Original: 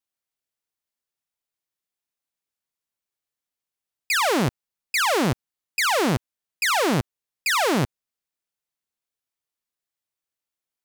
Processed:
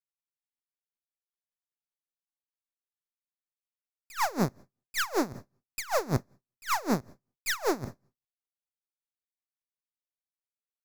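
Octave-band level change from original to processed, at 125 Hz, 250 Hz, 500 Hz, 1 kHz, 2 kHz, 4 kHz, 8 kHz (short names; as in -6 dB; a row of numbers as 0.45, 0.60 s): -8.0, -7.0, -7.5, -8.0, -11.5, -12.5, -9.0 dB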